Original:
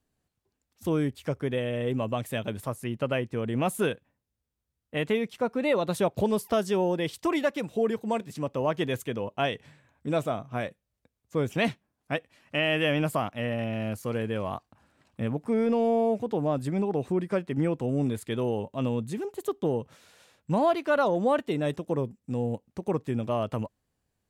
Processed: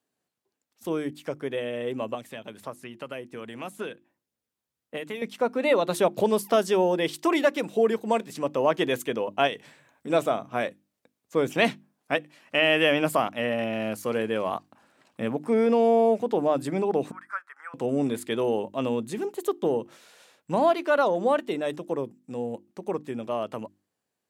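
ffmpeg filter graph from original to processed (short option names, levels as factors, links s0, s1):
-filter_complex "[0:a]asettb=1/sr,asplit=3[s0][s1][s2];[s0]atrim=end=2.144[s3];[s1]atrim=start=2.14:end=5.22,asetpts=PTS-STARTPTS,afade=t=in:d=0.004:c=qsin,afade=t=out:st=3.076:d=0.004:c=qsin,acrossover=split=950|6300[s4][s5][s6];[s4]acompressor=threshold=0.0158:ratio=4[s7];[s5]acompressor=threshold=0.00794:ratio=4[s8];[s6]acompressor=threshold=0.00126:ratio=4[s9];[s7][s8][s9]amix=inputs=3:normalize=0,aphaser=in_gain=1:out_gain=1:delay=1.3:decay=0.22:speed=1.8:type=triangular[s10];[s2]atrim=start=5.216[s11];[s3][s10]acrossfade=d=0.004:c1=hsin:c2=qsin[s12];[s12][s11]acrossfade=d=0.004:c1=qsin:c2=hsin,asettb=1/sr,asplit=3[s13][s14][s15];[s13]atrim=end=9.474[s16];[s14]atrim=start=9.47:end=10.1,asetpts=PTS-STARTPTS,afade=t=in:d=0.004:c=qsin,afade=t=out:st=0.626:d=0.004:c=qsin,highshelf=f=5900:g=5,acompressor=threshold=0.0178:ratio=2:attack=3.2:release=140:knee=1:detection=peak[s17];[s15]atrim=start=10.096[s18];[s16][s17]acrossfade=d=0.004:c1=hsin:c2=qsin[s19];[s19][s18]acrossfade=d=0.004:c1=qsin:c2=hsin,asettb=1/sr,asplit=3[s20][s21][s22];[s20]atrim=end=17.114[s23];[s21]atrim=start=17.11:end=17.74,asetpts=PTS-STARTPTS,afade=t=in:d=0.004:c=qsin,afade=t=out:st=0.626:d=0.004:c=qsin,highpass=f=1400:w=0.5412,highpass=f=1400:w=1.3066,highshelf=f=2000:t=q:w=3:g=-14[s24];[s22]atrim=start=17.736[s25];[s23][s24]acrossfade=d=0.004:c1=hsin:c2=qsin[s26];[s26][s25]acrossfade=d=0.004:c1=qsin:c2=hsin,highpass=240,bandreject=f=50:t=h:w=6,bandreject=f=100:t=h:w=6,bandreject=f=150:t=h:w=6,bandreject=f=200:t=h:w=6,bandreject=f=250:t=h:w=6,bandreject=f=300:t=h:w=6,bandreject=f=350:t=h:w=6,dynaudnorm=f=880:g=11:m=1.78"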